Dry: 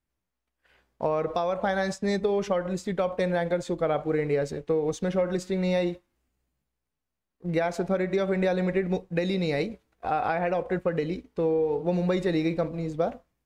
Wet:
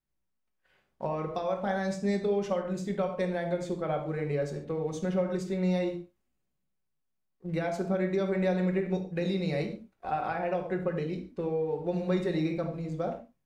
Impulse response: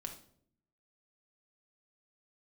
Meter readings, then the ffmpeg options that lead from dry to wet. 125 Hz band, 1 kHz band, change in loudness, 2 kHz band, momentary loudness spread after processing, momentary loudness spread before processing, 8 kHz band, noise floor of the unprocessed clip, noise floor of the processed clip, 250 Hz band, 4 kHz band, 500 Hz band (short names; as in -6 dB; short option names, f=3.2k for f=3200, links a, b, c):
-1.5 dB, -4.5 dB, -4.0 dB, -5.5 dB, 6 LU, 5 LU, -5.5 dB, -84 dBFS, -79 dBFS, -2.5 dB, -5.5 dB, -4.5 dB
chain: -filter_complex "[1:a]atrim=start_sample=2205,afade=t=out:st=0.2:d=0.01,atrim=end_sample=9261[a];[0:a][a]afir=irnorm=-1:irlink=0,volume=-2.5dB"